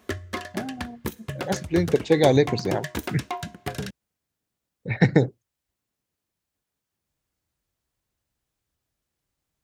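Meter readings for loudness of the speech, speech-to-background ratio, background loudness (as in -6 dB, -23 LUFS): -23.0 LUFS, 10.5 dB, -33.5 LUFS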